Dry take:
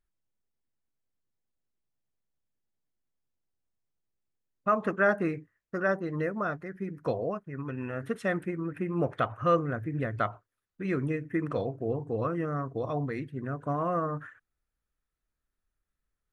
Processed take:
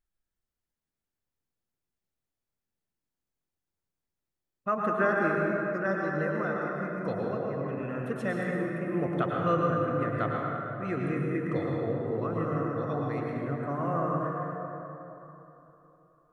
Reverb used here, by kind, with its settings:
dense smooth reverb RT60 3.4 s, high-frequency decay 0.45×, pre-delay 90 ms, DRR −2.5 dB
level −3.5 dB

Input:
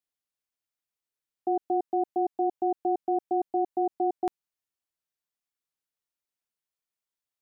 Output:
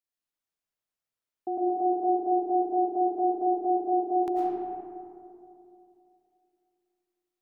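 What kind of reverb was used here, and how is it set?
comb and all-pass reverb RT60 2.7 s, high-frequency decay 0.35×, pre-delay 70 ms, DRR −5 dB
level −5 dB

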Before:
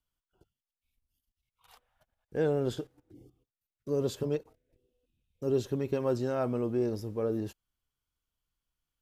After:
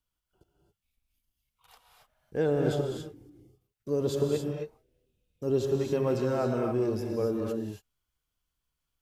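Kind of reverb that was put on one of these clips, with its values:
reverb whose tail is shaped and stops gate 300 ms rising, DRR 1 dB
level +1 dB

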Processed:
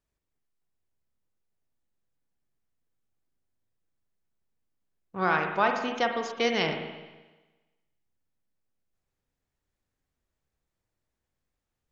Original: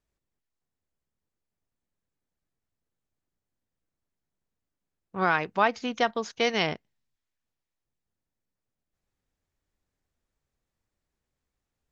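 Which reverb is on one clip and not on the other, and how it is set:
spring reverb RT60 1.2 s, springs 43/51 ms, chirp 75 ms, DRR 4 dB
level −2 dB

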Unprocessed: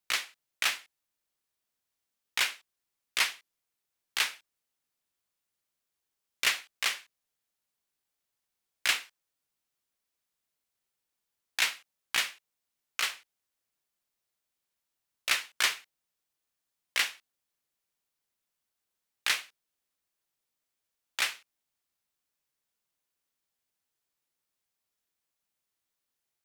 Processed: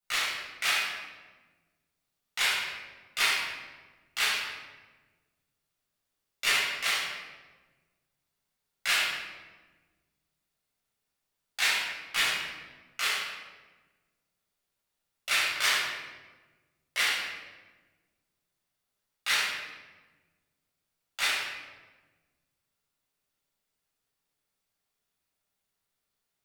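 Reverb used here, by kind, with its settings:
rectangular room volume 930 cubic metres, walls mixed, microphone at 7 metres
level −8.5 dB

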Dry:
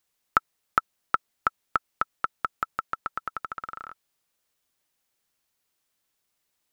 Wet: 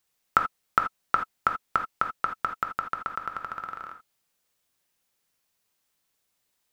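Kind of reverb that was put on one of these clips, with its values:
reverb whose tail is shaped and stops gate 100 ms flat, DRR 4.5 dB

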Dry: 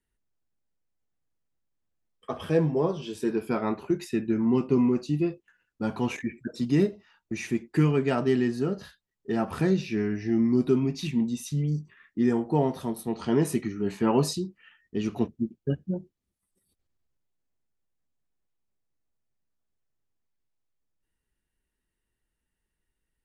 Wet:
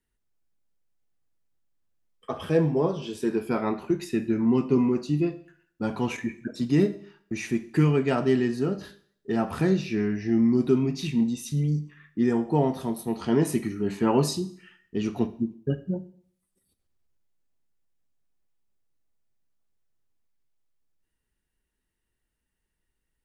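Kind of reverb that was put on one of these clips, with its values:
four-comb reverb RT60 0.57 s, combs from 27 ms, DRR 13 dB
level +1 dB

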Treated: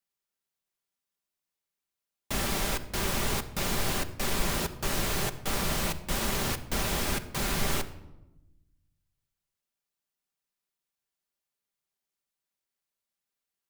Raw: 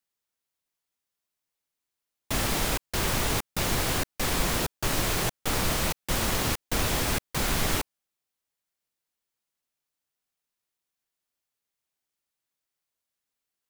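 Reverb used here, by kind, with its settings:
rectangular room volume 3,900 cubic metres, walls furnished, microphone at 1.2 metres
level −3.5 dB

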